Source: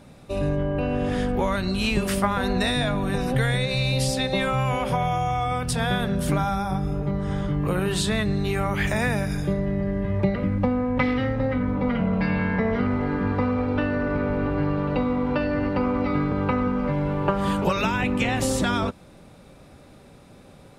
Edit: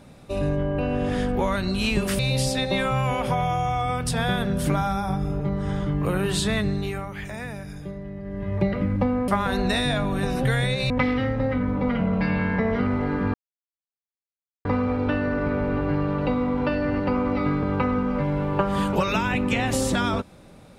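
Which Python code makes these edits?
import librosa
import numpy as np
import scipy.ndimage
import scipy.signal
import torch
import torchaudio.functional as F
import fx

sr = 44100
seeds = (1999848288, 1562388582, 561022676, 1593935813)

y = fx.edit(x, sr, fx.move(start_s=2.19, length_s=1.62, to_s=10.9),
    fx.fade_down_up(start_s=8.27, length_s=2.02, db=-10.5, fade_s=0.45),
    fx.insert_silence(at_s=13.34, length_s=1.31), tone=tone)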